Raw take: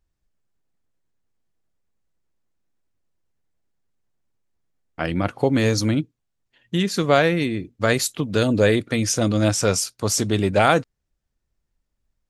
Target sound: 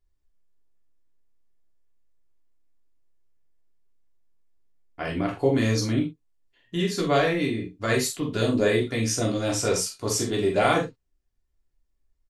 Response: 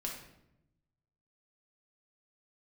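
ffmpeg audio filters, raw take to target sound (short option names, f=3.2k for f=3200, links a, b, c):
-filter_complex "[0:a]asplit=2[a][b];[b]adelay=44,volume=-9dB[c];[a][c]amix=inputs=2:normalize=0[d];[1:a]atrim=start_sample=2205,atrim=end_sample=6174,asetrate=74970,aresample=44100[e];[d][e]afir=irnorm=-1:irlink=0"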